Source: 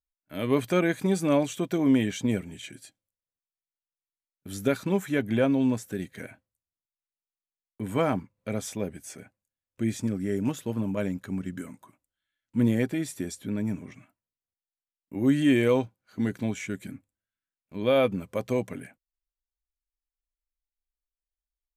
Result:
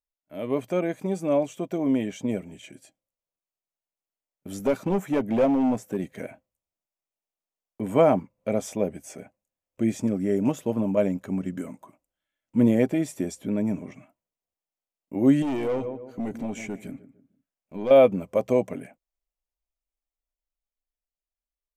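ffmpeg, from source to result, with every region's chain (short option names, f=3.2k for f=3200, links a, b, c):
-filter_complex "[0:a]asettb=1/sr,asplit=3[a][b][c];[a]atrim=end=4.594[d];[b]atrim=start=4.59:end=6.04,asetpts=PTS-STARTPTS,afade=t=in:d=0.004:c=qsin,afade=t=out:st=1.446:d=0.004:c=qsin,highpass=88,equalizer=f=5.6k:w=0.35:g=-3,asoftclip=type=hard:threshold=-23.5dB[e];[c]atrim=start=6.036[f];[d][e]acrossfade=d=0.004:c1=hsin:c2=qsin[g];[g][f]acrossfade=d=0.004:c1=qsin:c2=hsin,asettb=1/sr,asplit=3[h][i][j];[h]atrim=end=15.424[k];[i]atrim=start=15.42:end=17.91,asetpts=PTS-STARTPTS,afade=t=in:d=0.004:c=qsin,afade=t=out:st=2.486:d=0.004:c=qsin,asplit=2[l][m];[m]adelay=150,lowpass=f=1.3k:p=1,volume=-15dB,asplit=2[n][o];[o]adelay=150,lowpass=f=1.3k:p=1,volume=0.36,asplit=2[p][q];[q]adelay=150,lowpass=f=1.3k:p=1,volume=0.36[r];[l][n][p][r]amix=inputs=4:normalize=0,atrim=end_sample=109809,aeval=exprs='(tanh(17.8*val(0)+0.2)-tanh(0.2))/17.8':c=same,acompressor=threshold=-32dB:ratio=2:attack=3.2:release=140:knee=1:detection=peak[s];[j]atrim=start=17.906[t];[k][s]acrossfade=d=0.004:c1=hsin:c2=qsin[u];[u][t]acrossfade=d=0.004:c1=qsin:c2=hsin,equalizer=f=100:t=o:w=0.67:g=-8,equalizer=f=630:t=o:w=0.67:g=7,equalizer=f=1.6k:t=o:w=0.67:g=-7,equalizer=f=4k:t=o:w=0.67:g=-9,equalizer=f=10k:t=o:w=0.67:g=-4,dynaudnorm=f=640:g=9:m=8.5dB,highshelf=f=10k:g=-6,volume=-3.5dB"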